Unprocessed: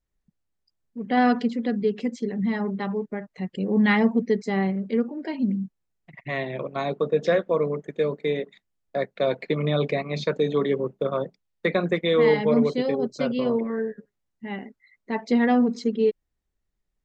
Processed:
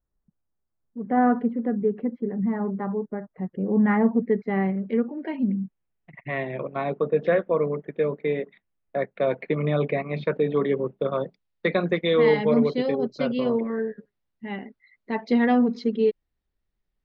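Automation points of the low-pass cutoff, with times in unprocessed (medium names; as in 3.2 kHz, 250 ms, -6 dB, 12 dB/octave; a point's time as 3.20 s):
low-pass 24 dB/octave
3.82 s 1.5 kHz
4.86 s 2.8 kHz
10.55 s 2.8 kHz
11.24 s 4.7 kHz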